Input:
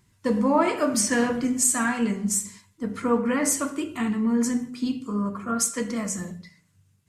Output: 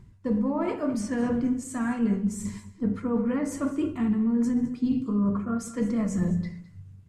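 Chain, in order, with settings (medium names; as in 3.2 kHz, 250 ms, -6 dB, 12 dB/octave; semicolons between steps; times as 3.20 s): reverse; compression 6:1, threshold -35 dBFS, peak gain reduction 18 dB; reverse; tilt EQ -3.5 dB/octave; delay 209 ms -17 dB; trim +5 dB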